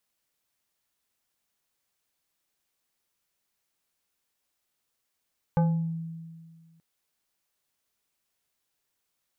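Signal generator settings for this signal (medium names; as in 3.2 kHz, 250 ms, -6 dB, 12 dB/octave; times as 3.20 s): FM tone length 1.23 s, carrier 164 Hz, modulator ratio 4.15, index 0.77, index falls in 0.56 s exponential, decay 1.85 s, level -18 dB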